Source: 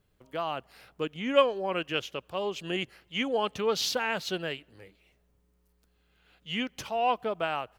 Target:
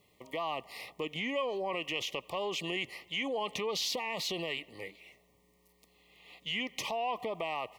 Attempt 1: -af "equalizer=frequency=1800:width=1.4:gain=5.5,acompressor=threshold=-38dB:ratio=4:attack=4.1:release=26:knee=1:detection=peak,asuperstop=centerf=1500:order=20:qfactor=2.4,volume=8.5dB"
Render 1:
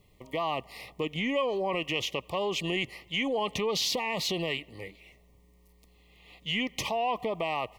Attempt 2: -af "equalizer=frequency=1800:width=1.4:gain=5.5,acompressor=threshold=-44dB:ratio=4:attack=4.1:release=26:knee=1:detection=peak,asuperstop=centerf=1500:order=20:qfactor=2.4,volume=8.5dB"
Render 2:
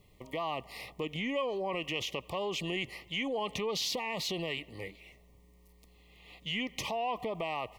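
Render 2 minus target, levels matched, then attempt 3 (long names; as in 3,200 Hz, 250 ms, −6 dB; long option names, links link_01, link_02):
250 Hz band +2.5 dB
-af "highpass=frequency=320:poles=1,equalizer=frequency=1800:width=1.4:gain=5.5,acompressor=threshold=-44dB:ratio=4:attack=4.1:release=26:knee=1:detection=peak,asuperstop=centerf=1500:order=20:qfactor=2.4,volume=8.5dB"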